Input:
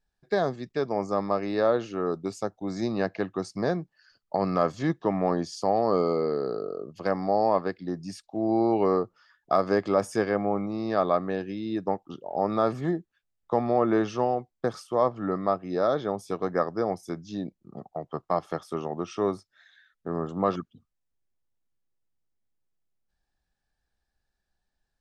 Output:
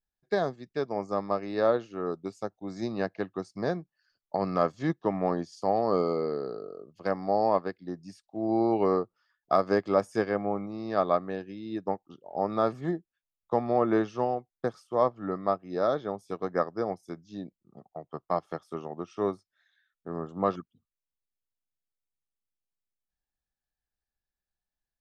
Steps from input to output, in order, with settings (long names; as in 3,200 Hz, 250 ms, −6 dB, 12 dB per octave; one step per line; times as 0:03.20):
expander for the loud parts 1.5 to 1, over −44 dBFS